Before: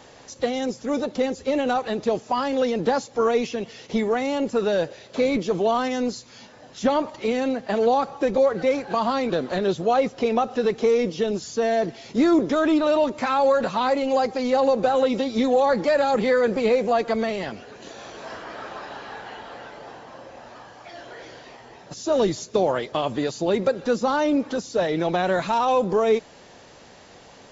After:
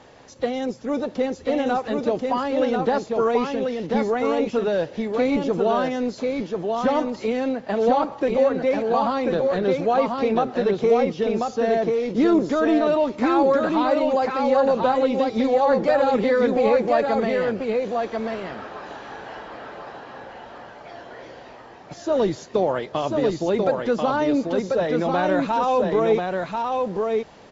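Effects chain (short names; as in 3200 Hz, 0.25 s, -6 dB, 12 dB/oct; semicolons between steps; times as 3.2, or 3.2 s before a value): LPF 2700 Hz 6 dB/oct; echo 1.039 s -3.5 dB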